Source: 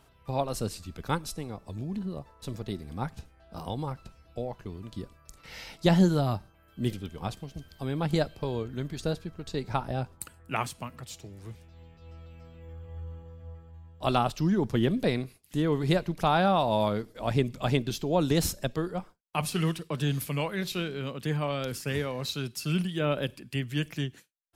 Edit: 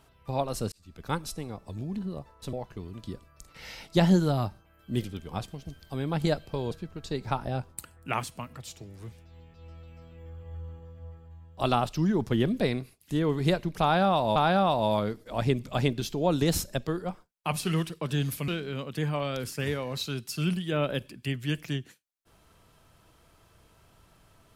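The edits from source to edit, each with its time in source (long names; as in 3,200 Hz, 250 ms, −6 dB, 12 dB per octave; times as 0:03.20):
0:00.72–0:01.20: fade in
0:02.53–0:04.42: remove
0:08.60–0:09.14: remove
0:16.25–0:16.79: repeat, 2 plays
0:20.37–0:20.76: remove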